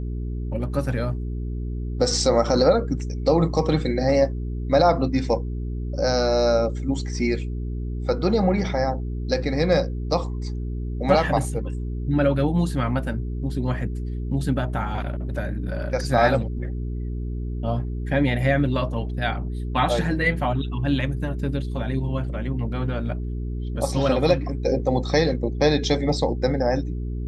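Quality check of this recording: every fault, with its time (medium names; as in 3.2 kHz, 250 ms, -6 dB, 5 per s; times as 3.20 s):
hum 60 Hz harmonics 7 -28 dBFS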